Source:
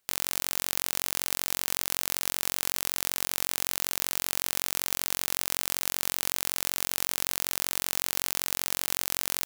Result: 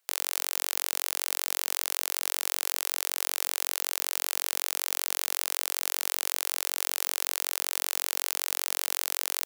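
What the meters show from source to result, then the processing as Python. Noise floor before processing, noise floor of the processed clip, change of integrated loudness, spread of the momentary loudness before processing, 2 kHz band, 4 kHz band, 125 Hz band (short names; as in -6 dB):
-75 dBFS, -59 dBFS, 0.0 dB, 0 LU, 0.0 dB, 0.0 dB, under -35 dB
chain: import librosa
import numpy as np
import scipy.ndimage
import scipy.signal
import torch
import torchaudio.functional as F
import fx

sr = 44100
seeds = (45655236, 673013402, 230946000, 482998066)

y = scipy.signal.sosfilt(scipy.signal.butter(4, 460.0, 'highpass', fs=sr, output='sos'), x)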